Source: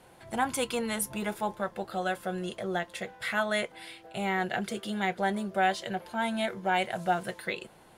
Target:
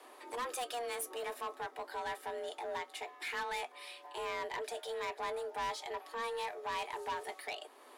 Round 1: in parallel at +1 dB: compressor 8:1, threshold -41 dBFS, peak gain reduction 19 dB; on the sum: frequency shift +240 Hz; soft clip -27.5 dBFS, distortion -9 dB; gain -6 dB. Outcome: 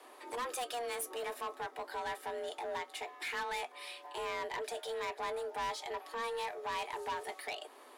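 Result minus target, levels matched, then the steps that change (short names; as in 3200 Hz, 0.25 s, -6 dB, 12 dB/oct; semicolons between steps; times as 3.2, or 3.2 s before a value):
compressor: peak gain reduction -8 dB
change: compressor 8:1, threshold -50 dBFS, peak gain reduction 27 dB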